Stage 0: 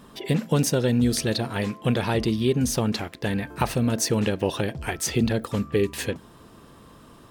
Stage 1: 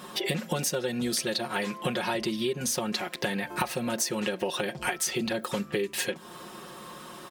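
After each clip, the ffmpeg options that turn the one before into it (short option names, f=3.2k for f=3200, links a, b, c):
-af "highpass=f=540:p=1,aecho=1:1:5.5:0.82,acompressor=threshold=-35dB:ratio=6,volume=8dB"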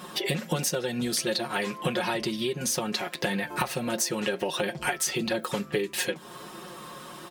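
-af "flanger=delay=5.4:depth=2.2:regen=63:speed=1.5:shape=triangular,volume=5.5dB"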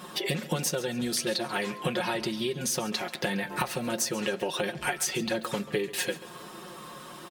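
-af "aecho=1:1:137|274|411:0.15|0.0554|0.0205,volume=-1.5dB"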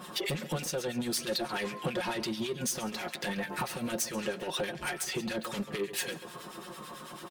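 -filter_complex "[0:a]asoftclip=type=tanh:threshold=-27.5dB,acrossover=split=1400[a][b];[a]aeval=exprs='val(0)*(1-0.7/2+0.7/2*cos(2*PI*9.1*n/s))':c=same[c];[b]aeval=exprs='val(0)*(1-0.7/2-0.7/2*cos(2*PI*9.1*n/s))':c=same[d];[c][d]amix=inputs=2:normalize=0,volume=2.5dB"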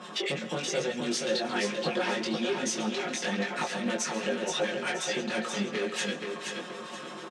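-filter_complex "[0:a]flanger=delay=18.5:depth=3.5:speed=1.1,highpass=f=190:w=0.5412,highpass=f=190:w=1.3066,equalizer=f=330:t=q:w=4:g=-3,equalizer=f=1k:t=q:w=4:g=-4,equalizer=f=4.6k:t=q:w=4:g=-5,lowpass=f=7.1k:w=0.5412,lowpass=f=7.1k:w=1.3066,asplit=2[a][b];[b]aecho=0:1:476|952|1428|1904:0.562|0.186|0.0612|0.0202[c];[a][c]amix=inputs=2:normalize=0,volume=7dB"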